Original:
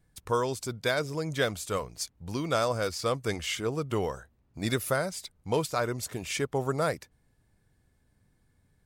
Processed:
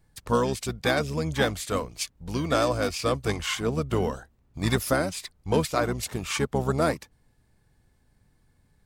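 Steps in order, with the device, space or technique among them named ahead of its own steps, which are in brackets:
octave pedal (pitch-shifted copies added −12 semitones −5 dB)
level +2.5 dB

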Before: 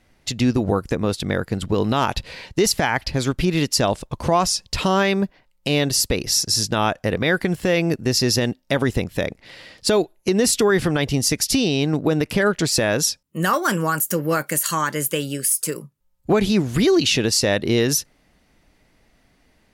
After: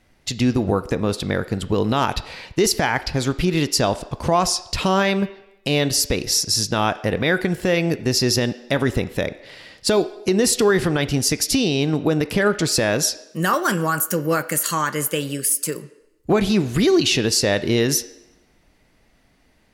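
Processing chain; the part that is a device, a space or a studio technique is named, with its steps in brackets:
filtered reverb send (on a send: high-pass filter 290 Hz 24 dB per octave + low-pass filter 4,500 Hz 12 dB per octave + convolution reverb RT60 0.90 s, pre-delay 15 ms, DRR 13 dB)

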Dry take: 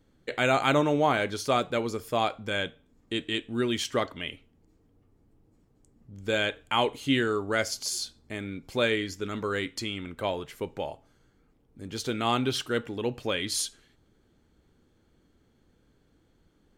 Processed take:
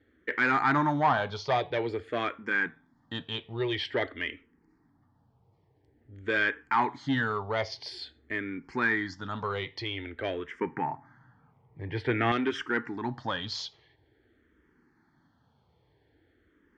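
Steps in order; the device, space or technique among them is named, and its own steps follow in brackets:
barber-pole phaser into a guitar amplifier (frequency shifter mixed with the dry sound −0.49 Hz; soft clipping −22.5 dBFS, distortion −14 dB; loudspeaker in its box 80–4,500 Hz, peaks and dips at 200 Hz −6 dB, 540 Hz −5 dB, 910 Hz +6 dB, 1,800 Hz +9 dB, 2,700 Hz −6 dB, 3,900 Hz −4 dB)
0:10.61–0:12.32: octave-band graphic EQ 125/250/1,000/2,000/4,000/8,000 Hz +8/+4/+5/+9/−10/−4 dB
level +3.5 dB

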